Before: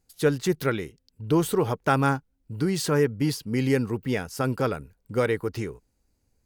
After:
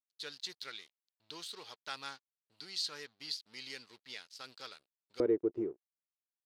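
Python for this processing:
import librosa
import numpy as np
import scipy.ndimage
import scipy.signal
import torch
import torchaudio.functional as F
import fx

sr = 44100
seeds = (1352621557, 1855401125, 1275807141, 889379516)

y = np.sign(x) * np.maximum(np.abs(x) - 10.0 ** (-40.5 / 20.0), 0.0)
y = fx.bandpass_q(y, sr, hz=fx.steps((0.0, 4200.0), (5.2, 360.0)), q=4.5)
y = F.gain(torch.from_numpy(y), 3.5).numpy()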